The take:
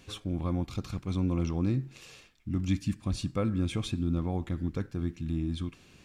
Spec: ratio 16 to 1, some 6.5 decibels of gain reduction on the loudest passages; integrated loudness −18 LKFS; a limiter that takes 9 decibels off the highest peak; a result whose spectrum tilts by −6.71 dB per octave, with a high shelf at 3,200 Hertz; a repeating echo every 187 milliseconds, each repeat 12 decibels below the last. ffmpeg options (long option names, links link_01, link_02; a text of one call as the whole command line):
ffmpeg -i in.wav -af "highshelf=frequency=3200:gain=-4.5,acompressor=threshold=-30dB:ratio=16,alimiter=level_in=7.5dB:limit=-24dB:level=0:latency=1,volume=-7.5dB,aecho=1:1:187|374|561:0.251|0.0628|0.0157,volume=22.5dB" out.wav